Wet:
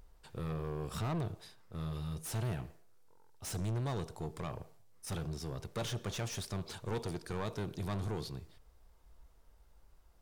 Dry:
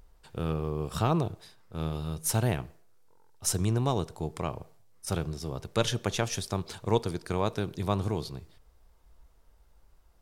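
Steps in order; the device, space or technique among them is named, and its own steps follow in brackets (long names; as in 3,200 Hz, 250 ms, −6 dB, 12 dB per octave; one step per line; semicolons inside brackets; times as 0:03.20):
saturation between pre-emphasis and de-emphasis (high-shelf EQ 3,500 Hz +10 dB; soft clipping −30 dBFS, distortion −5 dB; high-shelf EQ 3,500 Hz −10 dB)
level −2 dB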